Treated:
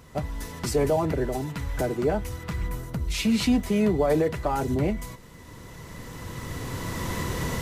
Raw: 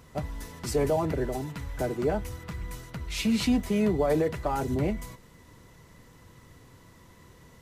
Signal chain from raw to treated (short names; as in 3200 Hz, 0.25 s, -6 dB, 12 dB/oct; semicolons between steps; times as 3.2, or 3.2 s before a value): recorder AGC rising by 10 dB/s; 2.67–3.13 bell 6700 Hz -> 1400 Hz -11 dB 2.9 oct; gain +2.5 dB